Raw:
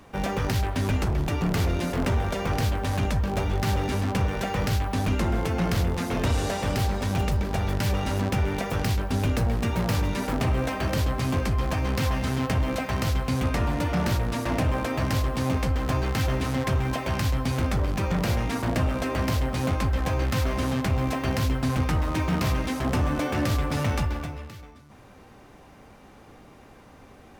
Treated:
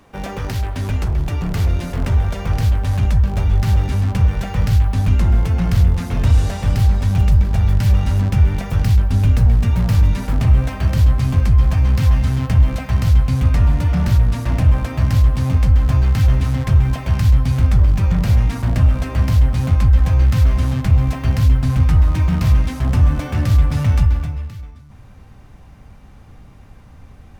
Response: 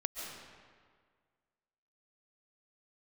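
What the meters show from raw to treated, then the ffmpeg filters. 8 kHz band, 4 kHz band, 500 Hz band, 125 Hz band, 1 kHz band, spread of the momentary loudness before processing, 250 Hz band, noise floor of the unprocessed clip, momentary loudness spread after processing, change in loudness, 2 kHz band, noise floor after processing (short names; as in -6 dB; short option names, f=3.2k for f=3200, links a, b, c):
0.0 dB, 0.0 dB, -2.5 dB, +11.5 dB, -1.0 dB, 1 LU, +3.0 dB, -50 dBFS, 5 LU, +9.5 dB, 0.0 dB, -42 dBFS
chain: -af "asubboost=boost=6:cutoff=140"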